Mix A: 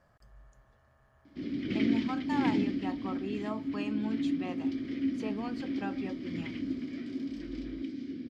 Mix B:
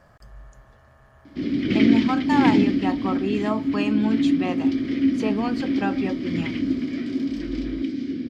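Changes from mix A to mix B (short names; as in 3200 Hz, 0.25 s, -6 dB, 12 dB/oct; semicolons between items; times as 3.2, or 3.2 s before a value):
speech +12.0 dB; background +11.0 dB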